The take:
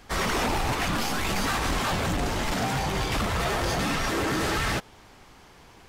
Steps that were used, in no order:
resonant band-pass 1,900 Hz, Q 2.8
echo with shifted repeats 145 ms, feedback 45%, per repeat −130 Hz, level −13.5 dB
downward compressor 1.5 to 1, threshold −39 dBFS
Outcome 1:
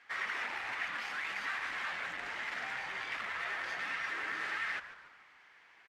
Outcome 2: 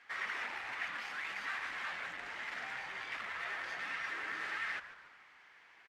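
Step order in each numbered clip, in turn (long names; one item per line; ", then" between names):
resonant band-pass, then downward compressor, then echo with shifted repeats
downward compressor, then resonant band-pass, then echo with shifted repeats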